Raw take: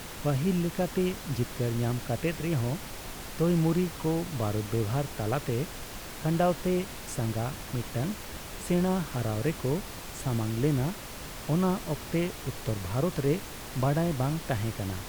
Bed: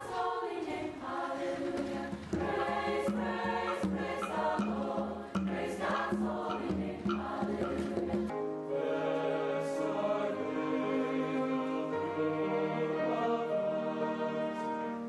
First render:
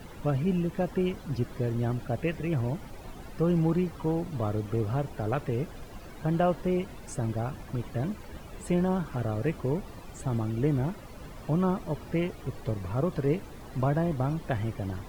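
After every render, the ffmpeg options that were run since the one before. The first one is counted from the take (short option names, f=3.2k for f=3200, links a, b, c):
-af "afftdn=nr=14:nf=-41"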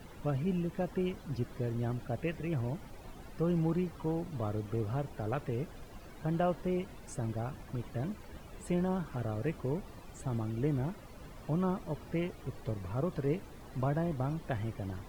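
-af "volume=-5.5dB"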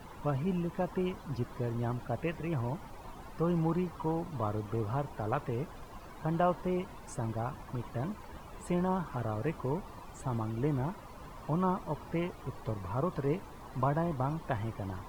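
-af "equalizer=f=1k:t=o:w=0.72:g=10"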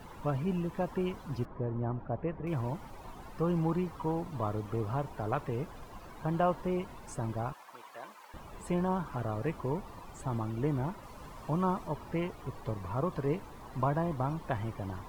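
-filter_complex "[0:a]asettb=1/sr,asplit=3[a][b][c];[a]atrim=end=1.454[d];[b]atrim=start=1.45:end=2.47,asetpts=PTS-STARTPTS,afade=t=in:d=0.004:c=qsin,afade=t=out:st=1.016:d=0.004:c=qsin,lowpass=1.2k[e];[c]atrim=start=2.466[f];[d][e]acrossfade=d=0.004:c1=hsin:c2=qsin[g];[g][f]acrossfade=d=0.004:c1=qsin:c2=hsin,asettb=1/sr,asplit=3[h][i][j];[h]atrim=end=7.534[k];[i]atrim=start=7.53:end=8.34,asetpts=PTS-STARTPTS,afade=t=in:d=0.004:c=qsin,afade=t=out:st=0.806:d=0.004:c=qsin,highpass=810[l];[j]atrim=start=8.336[m];[k][l]acrossfade=d=0.004:c1=hsin:c2=qsin[n];[n][m]acrossfade=d=0.004:c1=qsin:c2=hsin,asettb=1/sr,asplit=3[o][p][q];[o]atrim=end=11.034[r];[p]atrim=start=11.03:end=11.88,asetpts=PTS-STARTPTS,afade=t=in:d=0.004:c=qsin,afade=t=out:st=0.846:d=0.004:c=qsin,equalizer=f=7.9k:t=o:w=2.2:g=3[s];[q]atrim=start=11.876[t];[r][s]acrossfade=d=0.004:c1=hsin:c2=qsin[u];[u][t]acrossfade=d=0.004:c1=qsin:c2=hsin"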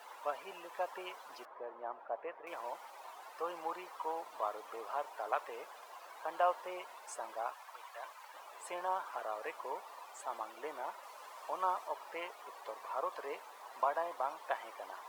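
-af "highpass=f=580:w=0.5412,highpass=f=580:w=1.3066"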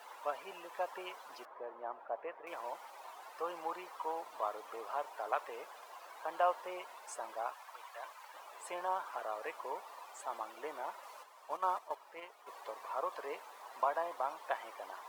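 -filter_complex "[0:a]asplit=3[a][b][c];[a]afade=t=out:st=11.22:d=0.02[d];[b]agate=range=-8dB:threshold=-41dB:ratio=16:release=100:detection=peak,afade=t=in:st=11.22:d=0.02,afade=t=out:st=12.46:d=0.02[e];[c]afade=t=in:st=12.46:d=0.02[f];[d][e][f]amix=inputs=3:normalize=0"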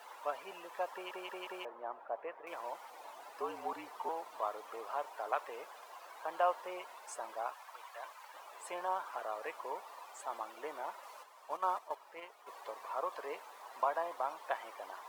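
-filter_complex "[0:a]asettb=1/sr,asplit=3[a][b][c];[a]atrim=end=2.904[d];[b]atrim=start=2.9:end=4.09,asetpts=PTS-STARTPTS,afade=t=in:d=0.004:c=qsin,afade=t=out:st=1.186:d=0.004:c=qsin,afreqshift=-61[e];[c]atrim=start=4.086[f];[d][e]acrossfade=d=0.004:c1=hsin:c2=qsin[g];[g][f]acrossfade=d=0.004:c1=qsin:c2=hsin,asplit=5[h][i][j][k][l];[h]atrim=end=1.112[m];[i]atrim=start=0.928:end=1.112[n];[j]atrim=start=0.928:end=1.112[o];[k]atrim=start=0.928:end=1.112[p];[l]atrim=start=1.648[q];[m][n]acrossfade=d=0.004:c1=hsin:c2=hsin[r];[r][o]acrossfade=d=0.004:c1=hsin:c2=hsin[s];[s][p]acrossfade=d=0.004:c1=hsin:c2=hsin[t];[t][q]acrossfade=d=0.004:c1=hsin:c2=hsin"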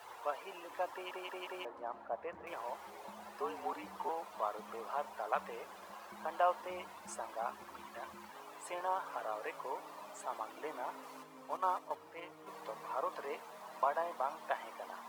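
-filter_complex "[1:a]volume=-24.5dB[a];[0:a][a]amix=inputs=2:normalize=0"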